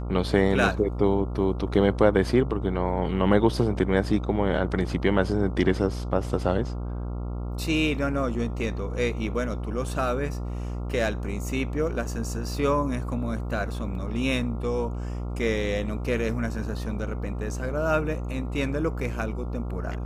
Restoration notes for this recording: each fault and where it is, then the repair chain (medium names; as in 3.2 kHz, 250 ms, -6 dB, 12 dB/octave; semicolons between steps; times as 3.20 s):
buzz 60 Hz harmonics 23 -31 dBFS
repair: de-hum 60 Hz, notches 23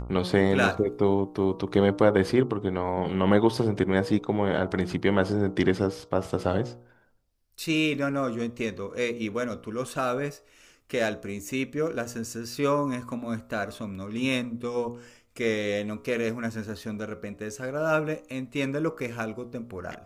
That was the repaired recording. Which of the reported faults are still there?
nothing left